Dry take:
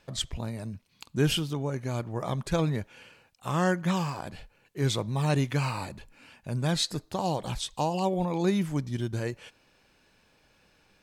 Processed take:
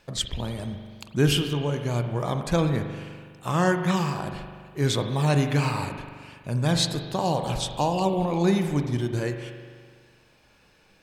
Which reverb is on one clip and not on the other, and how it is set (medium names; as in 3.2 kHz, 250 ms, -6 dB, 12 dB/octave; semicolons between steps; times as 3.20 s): spring tank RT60 1.8 s, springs 41 ms, chirp 65 ms, DRR 6 dB; trim +3.5 dB